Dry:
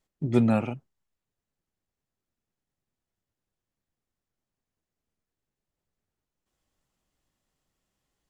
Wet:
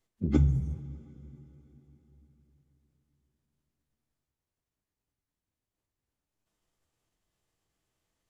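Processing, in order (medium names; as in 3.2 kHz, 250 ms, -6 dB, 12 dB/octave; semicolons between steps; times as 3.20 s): spectral replace 0.39–0.75 s, 260–5400 Hz after; formant-preserving pitch shift -8.5 st; two-slope reverb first 0.41 s, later 4.3 s, from -17 dB, DRR 8 dB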